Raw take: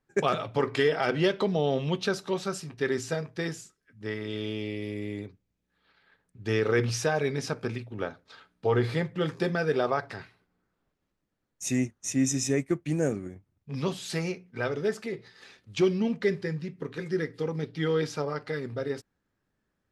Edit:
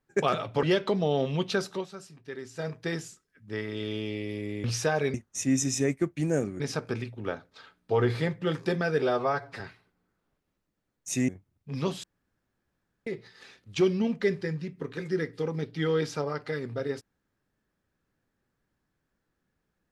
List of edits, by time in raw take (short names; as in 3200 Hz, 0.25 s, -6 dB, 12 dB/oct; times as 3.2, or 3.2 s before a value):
0.63–1.16 cut
2.26–3.21 dip -11.5 dB, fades 0.13 s
5.17–6.84 cut
9.76–10.15 stretch 1.5×
11.83–13.29 move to 7.34
14.04–15.07 room tone